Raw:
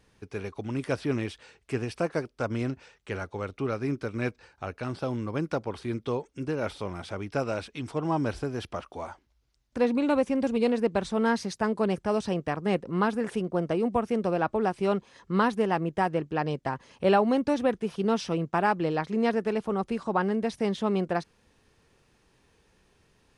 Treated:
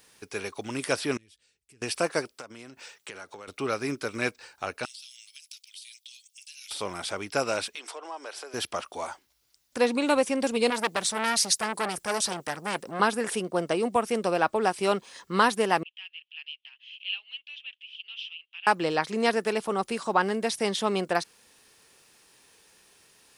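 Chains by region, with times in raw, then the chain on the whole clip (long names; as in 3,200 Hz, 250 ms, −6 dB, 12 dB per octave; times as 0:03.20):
0:01.17–0:01.82: guitar amp tone stack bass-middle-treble 10-0-1 + downward compressor 3 to 1, threshold −54 dBFS
0:02.33–0:03.48: high-pass filter 120 Hz + downward compressor 12 to 1, threshold −40 dBFS
0:04.85–0:06.71: Butterworth high-pass 2,800 Hz + downward compressor, threshold −52 dBFS
0:07.75–0:08.54: high-pass filter 430 Hz 24 dB per octave + high-shelf EQ 8,300 Hz −9.5 dB + downward compressor 2.5 to 1, threshold −43 dBFS
0:10.70–0:13.00: high-shelf EQ 5,000 Hz +8 dB + saturating transformer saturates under 1,800 Hz
0:15.83–0:18.67: upward compression, threshold −34 dBFS + flat-topped band-pass 2,900 Hz, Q 4.4
whole clip: RIAA equalisation recording; notch filter 6,300 Hz, Q 27; level +4 dB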